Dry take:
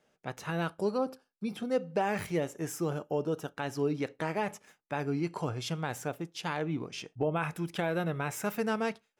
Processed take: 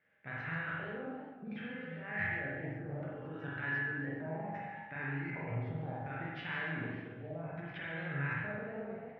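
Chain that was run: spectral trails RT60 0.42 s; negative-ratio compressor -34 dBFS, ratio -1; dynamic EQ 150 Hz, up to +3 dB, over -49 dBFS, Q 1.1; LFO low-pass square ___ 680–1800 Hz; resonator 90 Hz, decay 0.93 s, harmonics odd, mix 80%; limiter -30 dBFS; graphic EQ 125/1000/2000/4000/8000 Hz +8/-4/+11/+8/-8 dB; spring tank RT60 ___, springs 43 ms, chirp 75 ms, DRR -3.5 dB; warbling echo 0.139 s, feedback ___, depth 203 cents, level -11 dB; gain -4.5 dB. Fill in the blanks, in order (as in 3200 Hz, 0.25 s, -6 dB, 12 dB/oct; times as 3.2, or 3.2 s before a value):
0.66 Hz, 1.1 s, 50%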